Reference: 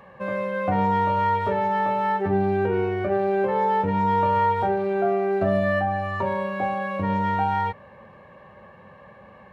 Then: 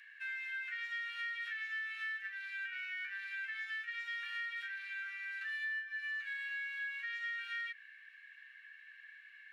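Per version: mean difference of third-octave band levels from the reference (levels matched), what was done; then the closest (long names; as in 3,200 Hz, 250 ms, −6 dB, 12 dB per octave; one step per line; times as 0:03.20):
19.5 dB: Butterworth high-pass 1,600 Hz 72 dB per octave
spectral tilt −2.5 dB per octave
downward compressor 6 to 1, threshold −42 dBFS, peak gain reduction 11.5 dB
level +4 dB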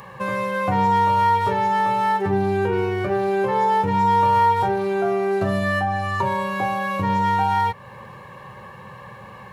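4.5 dB: thirty-one-band graphic EQ 125 Hz +12 dB, 250 Hz −5 dB, 630 Hz −9 dB, 1,000 Hz +5 dB
in parallel at +2.5 dB: downward compressor, threshold −33 dBFS, peak gain reduction 16 dB
on the sum: bass and treble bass −2 dB, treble +15 dB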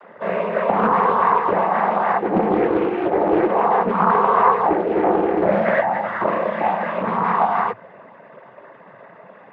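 6.0 dB: three-way crossover with the lows and the highs turned down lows −22 dB, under 190 Hz, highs −14 dB, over 2,300 Hz
cochlear-implant simulation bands 16
highs frequency-modulated by the lows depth 0.52 ms
level +6 dB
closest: second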